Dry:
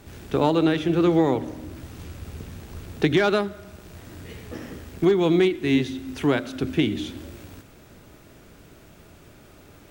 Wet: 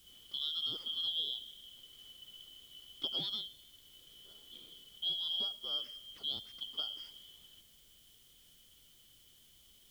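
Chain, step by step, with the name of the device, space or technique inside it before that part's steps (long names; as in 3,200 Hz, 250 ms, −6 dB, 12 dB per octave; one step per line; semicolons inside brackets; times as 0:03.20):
split-band scrambled radio (band-splitting scrambler in four parts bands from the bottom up 2413; band-pass filter 350–2,900 Hz; white noise bed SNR 24 dB)
guitar amp tone stack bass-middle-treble 10-0-1
level +9 dB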